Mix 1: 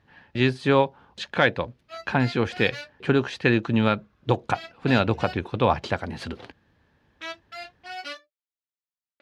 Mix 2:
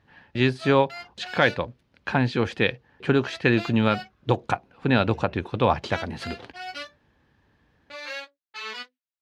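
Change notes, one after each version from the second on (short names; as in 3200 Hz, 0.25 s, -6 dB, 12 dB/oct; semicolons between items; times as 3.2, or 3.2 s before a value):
background: entry -1.30 s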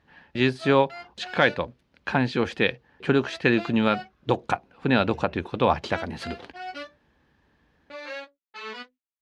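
background: add tilt -3 dB/oct; master: add bell 110 Hz -9 dB 0.35 oct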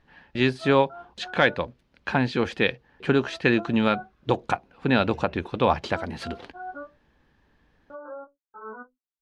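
background: add brick-wall FIR low-pass 1600 Hz; master: remove HPF 54 Hz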